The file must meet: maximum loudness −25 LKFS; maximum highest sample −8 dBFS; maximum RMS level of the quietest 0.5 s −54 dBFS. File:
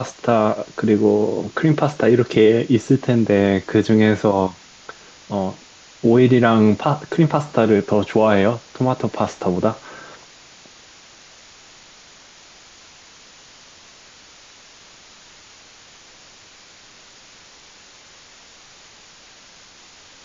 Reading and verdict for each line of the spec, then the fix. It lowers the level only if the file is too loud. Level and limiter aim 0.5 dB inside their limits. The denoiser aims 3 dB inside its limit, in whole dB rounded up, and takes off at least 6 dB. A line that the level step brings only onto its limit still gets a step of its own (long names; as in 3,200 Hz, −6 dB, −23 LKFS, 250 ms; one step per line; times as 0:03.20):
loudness −17.5 LKFS: out of spec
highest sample −3.5 dBFS: out of spec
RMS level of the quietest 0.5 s −46 dBFS: out of spec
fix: broadband denoise 6 dB, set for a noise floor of −46 dBFS
level −8 dB